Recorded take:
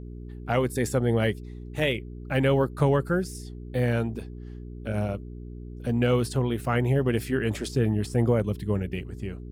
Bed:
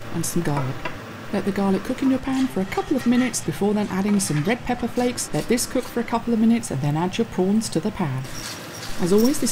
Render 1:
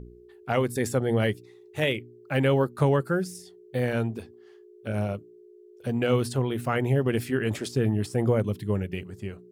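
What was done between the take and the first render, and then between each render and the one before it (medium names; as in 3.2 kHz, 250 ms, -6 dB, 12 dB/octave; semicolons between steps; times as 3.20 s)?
de-hum 60 Hz, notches 5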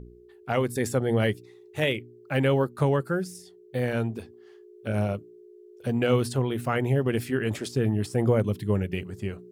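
gain riding within 5 dB 2 s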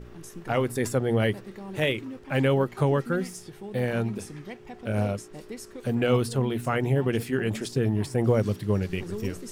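add bed -19 dB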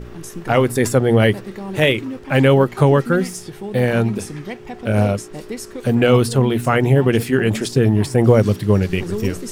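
trim +10 dB; peak limiter -2 dBFS, peak gain reduction 1.5 dB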